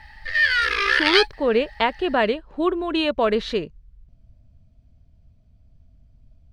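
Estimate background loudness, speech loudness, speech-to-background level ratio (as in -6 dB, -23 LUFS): -19.0 LUFS, -22.5 LUFS, -3.5 dB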